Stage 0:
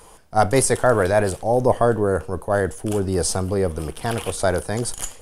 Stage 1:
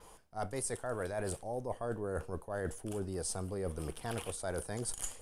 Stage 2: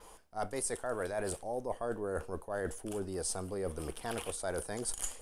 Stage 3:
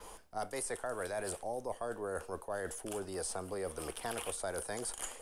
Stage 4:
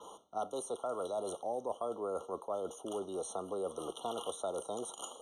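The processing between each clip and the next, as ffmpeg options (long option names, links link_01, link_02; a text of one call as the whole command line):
ffmpeg -i in.wav -af "adynamicequalizer=threshold=0.00891:dfrequency=8800:dqfactor=2.7:tfrequency=8800:tqfactor=2.7:attack=5:release=100:ratio=0.375:range=3:mode=boostabove:tftype=bell,areverse,acompressor=threshold=-25dB:ratio=10,areverse,volume=-9dB" out.wav
ffmpeg -i in.wav -af "equalizer=frequency=120:width=1.4:gain=-9,volume=2dB" out.wav
ffmpeg -i in.wav -filter_complex "[0:a]acrossover=split=240|490|3300|7000[link_01][link_02][link_03][link_04][link_05];[link_01]acompressor=threshold=-55dB:ratio=4[link_06];[link_02]acompressor=threshold=-52dB:ratio=4[link_07];[link_03]acompressor=threshold=-42dB:ratio=4[link_08];[link_04]acompressor=threshold=-57dB:ratio=4[link_09];[link_05]acompressor=threshold=-45dB:ratio=4[link_10];[link_06][link_07][link_08][link_09][link_10]amix=inputs=5:normalize=0,volume=4dB" out.wav
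ffmpeg -i in.wav -af "highpass=200,lowpass=6900,afftfilt=real='re*eq(mod(floor(b*sr/1024/1400),2),0)':imag='im*eq(mod(floor(b*sr/1024/1400),2),0)':win_size=1024:overlap=0.75,volume=2dB" out.wav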